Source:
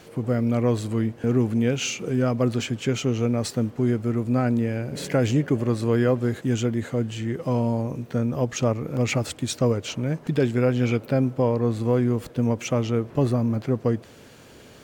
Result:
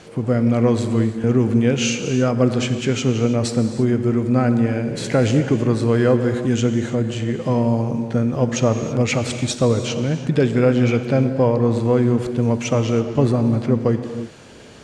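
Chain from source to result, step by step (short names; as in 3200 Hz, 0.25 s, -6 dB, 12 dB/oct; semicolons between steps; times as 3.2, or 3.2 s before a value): LPF 9400 Hz 24 dB/oct; non-linear reverb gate 0.36 s flat, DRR 8 dB; gain +4.5 dB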